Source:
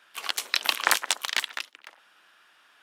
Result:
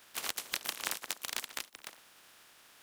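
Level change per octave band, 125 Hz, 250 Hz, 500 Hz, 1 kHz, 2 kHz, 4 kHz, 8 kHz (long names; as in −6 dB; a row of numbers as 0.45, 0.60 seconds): can't be measured, −5.5 dB, −9.5 dB, −13.5 dB, −13.5 dB, −11.5 dB, −7.5 dB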